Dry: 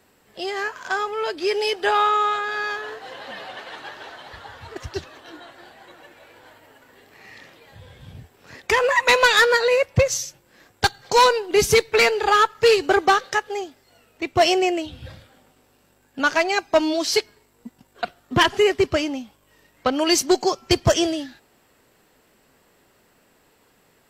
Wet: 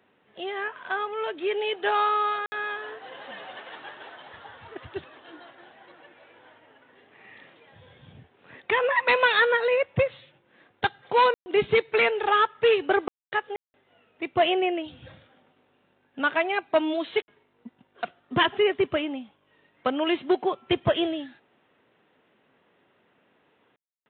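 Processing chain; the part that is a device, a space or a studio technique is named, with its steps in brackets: call with lost packets (high-pass 130 Hz 12 dB/octave; resampled via 8 kHz; lost packets of 60 ms bursts); trim -4.5 dB

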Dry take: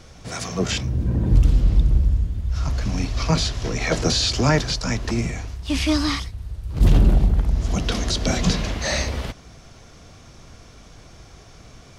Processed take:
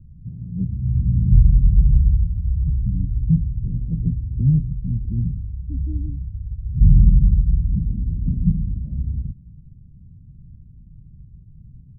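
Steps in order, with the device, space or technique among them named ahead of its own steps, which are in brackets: the neighbour's flat through the wall (low-pass 180 Hz 24 dB/octave; peaking EQ 150 Hz +4 dB); trim +2.5 dB

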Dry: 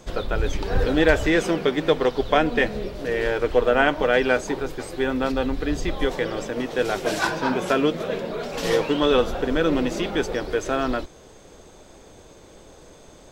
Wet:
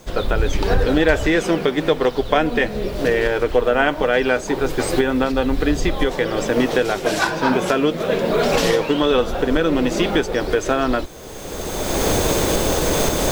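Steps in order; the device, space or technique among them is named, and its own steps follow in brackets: cheap recorder with automatic gain (white noise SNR 35 dB; recorder AGC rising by 22 dB/s); trim +1.5 dB

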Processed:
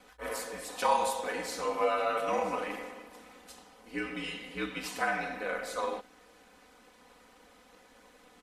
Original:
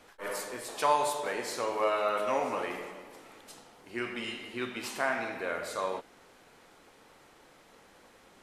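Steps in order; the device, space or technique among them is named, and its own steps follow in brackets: ring-modulated robot voice (ring modulator 58 Hz; comb 4 ms, depth 86%)

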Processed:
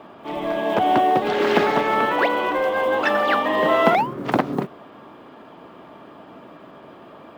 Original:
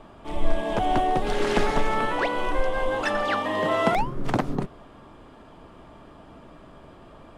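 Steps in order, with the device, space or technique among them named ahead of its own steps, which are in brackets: early digital voice recorder (band-pass 200–3900 Hz; block-companded coder 7-bit); trim +6 dB

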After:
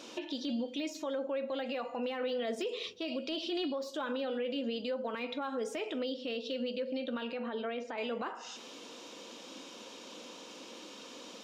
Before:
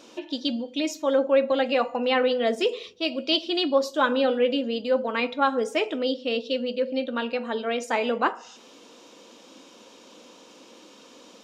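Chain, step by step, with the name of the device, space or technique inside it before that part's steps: broadcast voice chain (high-pass 71 Hz; de-esser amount 95%; compression 4:1, threshold -30 dBFS, peak gain reduction 12.5 dB; peaking EQ 3.3 kHz +3 dB 1.9 oct; peak limiter -27.5 dBFS, peak gain reduction 11 dB); 7.33–7.98 s: distance through air 230 m

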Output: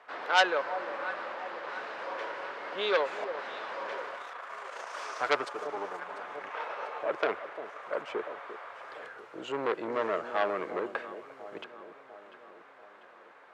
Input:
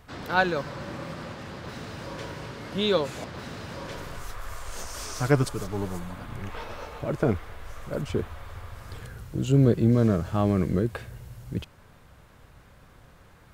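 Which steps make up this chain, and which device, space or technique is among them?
8.23–8.65 s: steep high-pass 300 Hz; three-band isolator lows -23 dB, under 450 Hz, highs -16 dB, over 2.6 kHz; echo whose repeats swap between lows and highs 347 ms, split 900 Hz, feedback 71%, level -13 dB; public-address speaker with an overloaded transformer (transformer saturation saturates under 2.9 kHz; band-pass 310–6800 Hz); trim +4.5 dB

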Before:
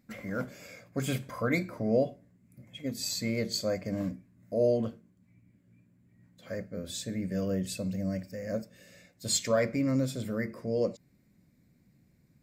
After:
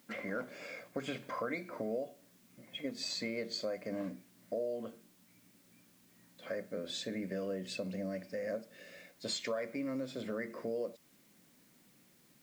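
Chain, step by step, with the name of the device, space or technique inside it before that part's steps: baby monitor (band-pass 300–3900 Hz; compression, threshold -39 dBFS, peak gain reduction 16 dB; white noise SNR 27 dB); trim +4 dB

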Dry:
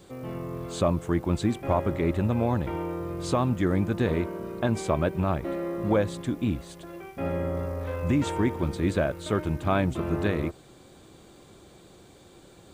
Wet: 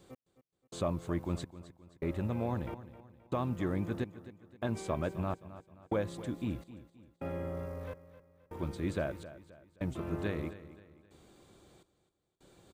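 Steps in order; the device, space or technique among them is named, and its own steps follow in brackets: trance gate with a delay (trance gate "x....xxxx" 104 bpm -60 dB; feedback delay 263 ms, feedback 40%, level -15 dB); trim -9 dB

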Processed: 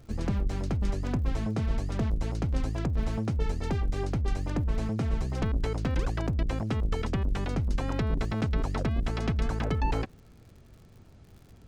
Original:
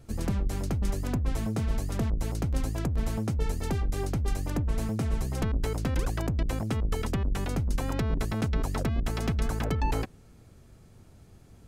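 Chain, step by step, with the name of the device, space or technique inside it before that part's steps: lo-fi chain (low-pass 5.2 kHz 12 dB/octave; wow and flutter 14 cents; crackle 81 per s -47 dBFS)

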